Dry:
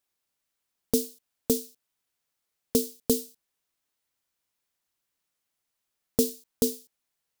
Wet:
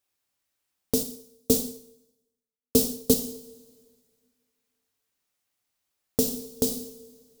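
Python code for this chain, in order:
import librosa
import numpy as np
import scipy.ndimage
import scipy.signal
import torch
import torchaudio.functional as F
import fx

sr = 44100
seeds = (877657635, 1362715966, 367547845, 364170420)

y = fx.rev_double_slope(x, sr, seeds[0], early_s=0.62, late_s=2.0, knee_db=-17, drr_db=2.5)
y = fx.band_widen(y, sr, depth_pct=70, at=(1.03, 3.14))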